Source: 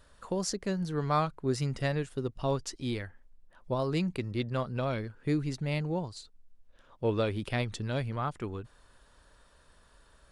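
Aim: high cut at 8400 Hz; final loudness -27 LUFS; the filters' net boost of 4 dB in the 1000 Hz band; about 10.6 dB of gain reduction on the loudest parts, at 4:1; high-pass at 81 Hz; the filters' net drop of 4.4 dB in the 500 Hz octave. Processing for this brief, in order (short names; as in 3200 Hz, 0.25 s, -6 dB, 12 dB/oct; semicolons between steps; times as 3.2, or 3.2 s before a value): HPF 81 Hz; LPF 8400 Hz; bell 500 Hz -7.5 dB; bell 1000 Hz +7 dB; compressor 4:1, threshold -32 dBFS; gain +10.5 dB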